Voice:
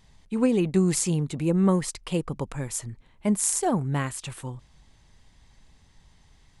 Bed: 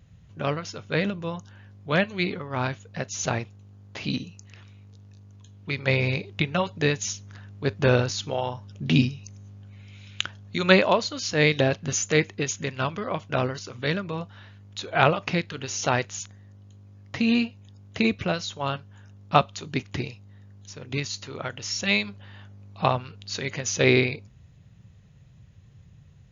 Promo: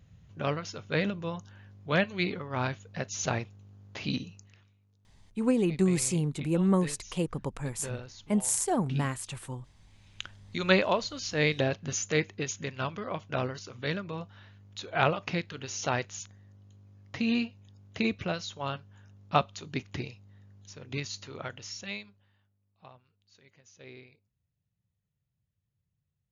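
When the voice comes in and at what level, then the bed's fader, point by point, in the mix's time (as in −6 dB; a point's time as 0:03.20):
5.05 s, −3.5 dB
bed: 0:04.32 −3.5 dB
0:04.79 −19.5 dB
0:09.82 −19.5 dB
0:10.50 −6 dB
0:21.50 −6 dB
0:22.58 −30 dB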